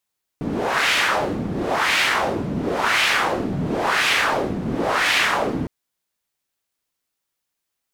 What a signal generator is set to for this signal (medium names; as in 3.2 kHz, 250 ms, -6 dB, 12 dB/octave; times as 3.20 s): wind-like swept noise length 5.26 s, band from 200 Hz, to 2.4 kHz, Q 1.7, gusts 5, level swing 7 dB